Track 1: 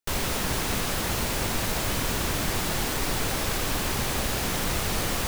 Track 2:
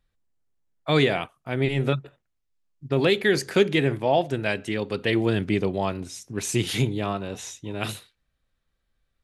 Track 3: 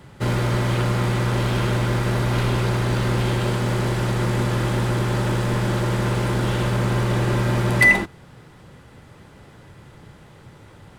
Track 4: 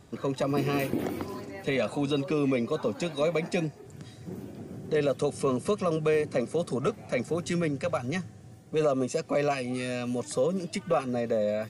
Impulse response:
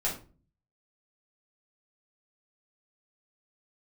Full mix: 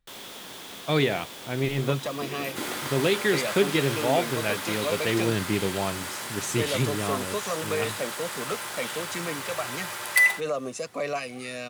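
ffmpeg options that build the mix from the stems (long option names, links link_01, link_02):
-filter_complex "[0:a]highpass=230,equalizer=frequency=3400:width_type=o:width=0.29:gain=10,volume=-13.5dB[link_01];[1:a]volume=-3dB[link_02];[2:a]highpass=930,aemphasis=mode=production:type=50kf,adelay=2350,volume=-6dB[link_03];[3:a]lowshelf=frequency=450:gain=-11.5,adelay=1650,volume=1dB[link_04];[link_01][link_02][link_03][link_04]amix=inputs=4:normalize=0"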